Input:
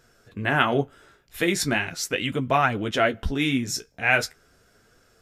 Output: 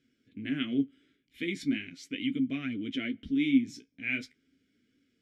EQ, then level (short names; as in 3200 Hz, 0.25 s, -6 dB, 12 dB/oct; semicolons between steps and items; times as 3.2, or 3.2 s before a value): vowel filter i; low shelf 300 Hz +11.5 dB; high shelf 3200 Hz +9 dB; -3.0 dB